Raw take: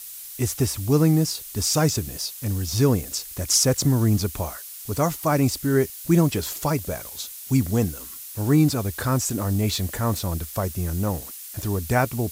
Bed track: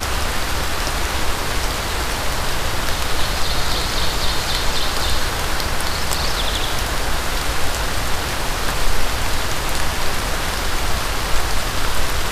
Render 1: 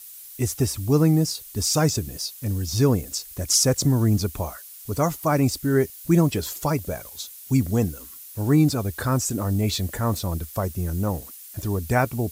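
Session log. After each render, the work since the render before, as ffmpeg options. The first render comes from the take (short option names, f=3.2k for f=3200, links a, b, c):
-af "afftdn=nr=6:nf=-39"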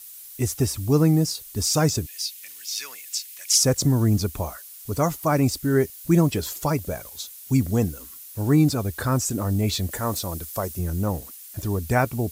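-filter_complex "[0:a]asettb=1/sr,asplit=3[a][b][c];[a]atrim=end=2.064[d];[b]atrim=start=2.06:end=3.58,asetpts=PTS-STARTPTS,afade=t=in:d=0.004:c=qsin,afade=t=out:st=1.516:d=0.004:c=qsin,highpass=f=2.3k:t=q:w=1.9[e];[c]atrim=start=3.576[f];[d][e]acrossfade=d=0.004:c1=hsin:c2=qsin[g];[g][f]acrossfade=d=0.004:c1=qsin:c2=hsin,asettb=1/sr,asplit=3[h][i][j];[h]atrim=end=9.914[k];[i]atrim=start=9.91:end=10.79,asetpts=PTS-STARTPTS,afade=t=in:d=0.004:c=qsin,afade=t=out:st=0.876:d=0.004:c=qsin,bass=f=250:g=-6,treble=f=4k:g=4[l];[j]atrim=start=10.786[m];[k][l]acrossfade=d=0.004:c1=hsin:c2=qsin[n];[n][m]acrossfade=d=0.004:c1=qsin:c2=hsin"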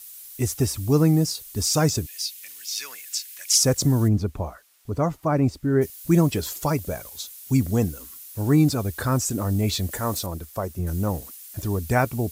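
-filter_complex "[0:a]asettb=1/sr,asplit=3[a][b][c];[a]atrim=end=2.904[d];[b]atrim=start=2.9:end=3.42,asetpts=PTS-STARTPTS,afade=t=in:d=0.004:c=qsin,afade=t=out:st=0.516:d=0.004:c=qsin,equalizer=f=1.6k:t=o:w=0.34:g=6.5[e];[c]atrim=start=3.416[f];[d][e]acrossfade=d=0.004:c1=hsin:c2=qsin[g];[g][f]acrossfade=d=0.004:c1=qsin:c2=hsin,asplit=3[h][i][j];[h]afade=t=out:st=4.07:d=0.02[k];[i]lowpass=f=1.2k:p=1,afade=t=in:st=4.07:d=0.02,afade=t=out:st=5.81:d=0.02[l];[j]afade=t=in:st=5.81:d=0.02[m];[k][l][m]amix=inputs=3:normalize=0,asettb=1/sr,asplit=3[n][o][p];[n]atrim=end=10.264[q];[o]atrim=start=10.26:end=10.87,asetpts=PTS-STARTPTS,afade=t=in:d=0.004:c=qsin,afade=t=out:st=0.606:d=0.004:c=qsin,highshelf=f=2.7k:g=-9.5[r];[p]atrim=start=10.866[s];[q][r]acrossfade=d=0.004:c1=hsin:c2=qsin[t];[t][s]acrossfade=d=0.004:c1=qsin:c2=hsin"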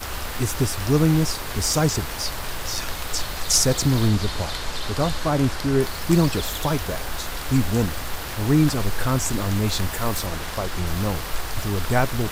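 -filter_complex "[1:a]volume=-9.5dB[a];[0:a][a]amix=inputs=2:normalize=0"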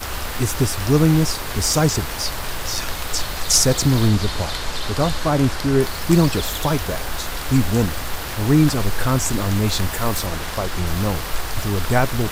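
-af "volume=3dB,alimiter=limit=-3dB:level=0:latency=1"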